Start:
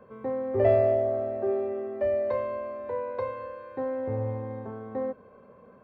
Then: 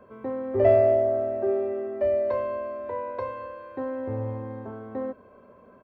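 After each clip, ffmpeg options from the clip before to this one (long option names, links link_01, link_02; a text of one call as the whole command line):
ffmpeg -i in.wav -af "aecho=1:1:3.1:0.38,volume=1dB" out.wav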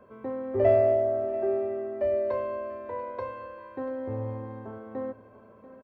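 ffmpeg -i in.wav -af "aecho=1:1:688:0.15,volume=-2.5dB" out.wav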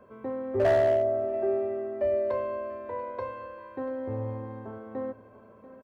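ffmpeg -i in.wav -af "asoftclip=type=hard:threshold=-18dB" out.wav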